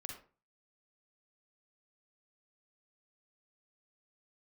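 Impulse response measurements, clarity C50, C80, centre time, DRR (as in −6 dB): 3.5 dB, 10.0 dB, 29 ms, 1.5 dB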